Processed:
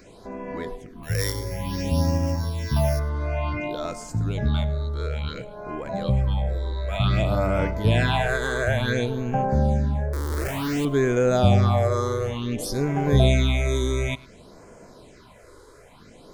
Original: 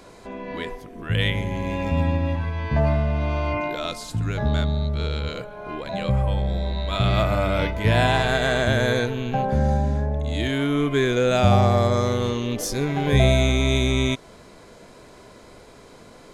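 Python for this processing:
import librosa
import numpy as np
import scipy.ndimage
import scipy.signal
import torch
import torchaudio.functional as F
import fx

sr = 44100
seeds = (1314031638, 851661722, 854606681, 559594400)

y = fx.sample_sort(x, sr, block=8, at=(1.02, 2.98), fade=0.02)
y = fx.schmitt(y, sr, flips_db=-26.0, at=(10.13, 10.85))
y = fx.phaser_stages(y, sr, stages=6, low_hz=180.0, high_hz=3900.0, hz=0.56, feedback_pct=5)
y = y + 10.0 ** (-21.5 / 20.0) * np.pad(y, (int(104 * sr / 1000.0), 0))[:len(y)]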